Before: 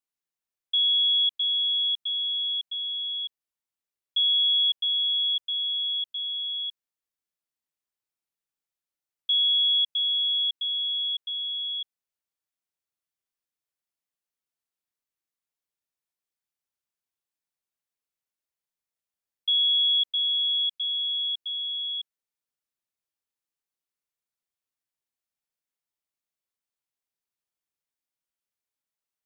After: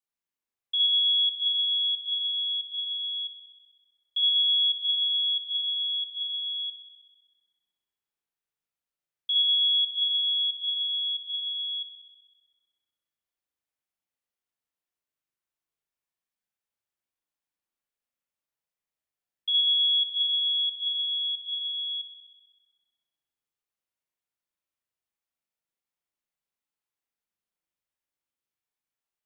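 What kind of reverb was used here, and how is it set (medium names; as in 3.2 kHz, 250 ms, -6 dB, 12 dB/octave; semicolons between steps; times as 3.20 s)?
spring tank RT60 1.3 s, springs 39 ms, chirp 65 ms, DRR -2 dB; trim -3.5 dB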